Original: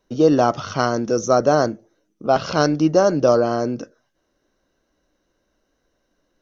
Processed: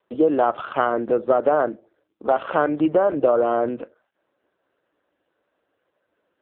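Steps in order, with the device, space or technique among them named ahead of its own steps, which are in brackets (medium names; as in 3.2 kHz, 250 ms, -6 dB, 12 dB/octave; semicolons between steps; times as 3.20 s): dynamic bell 120 Hz, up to +4 dB, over -36 dBFS, Q 1.7; voicemail (band-pass 380–2900 Hz; compression 6:1, threshold -17 dBFS, peak gain reduction 6.5 dB; trim +4 dB; AMR-NB 5.9 kbps 8 kHz)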